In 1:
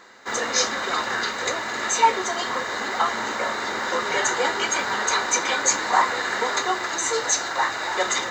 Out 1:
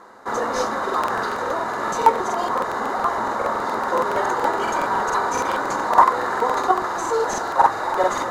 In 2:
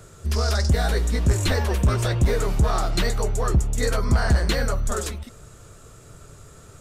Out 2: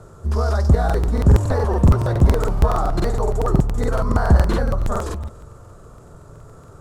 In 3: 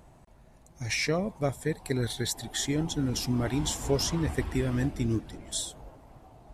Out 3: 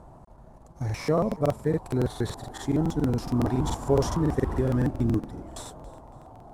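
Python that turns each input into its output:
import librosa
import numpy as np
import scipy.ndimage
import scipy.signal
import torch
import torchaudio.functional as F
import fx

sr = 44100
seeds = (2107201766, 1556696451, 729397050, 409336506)

p1 = fx.cvsd(x, sr, bps=64000)
p2 = fx.high_shelf_res(p1, sr, hz=1600.0, db=-12.0, q=1.5)
p3 = fx.echo_feedback(p2, sr, ms=288, feedback_pct=32, wet_db=-23)
p4 = fx.level_steps(p3, sr, step_db=19)
p5 = p3 + (p4 * librosa.db_to_amplitude(-1.5))
p6 = fx.buffer_crackle(p5, sr, first_s=0.85, period_s=0.14, block=2048, kind='repeat')
y = p6 * librosa.db_to_amplitude(2.0)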